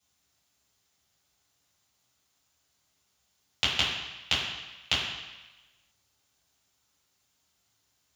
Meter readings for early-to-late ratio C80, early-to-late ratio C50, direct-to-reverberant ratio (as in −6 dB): 4.0 dB, 2.0 dB, −8.0 dB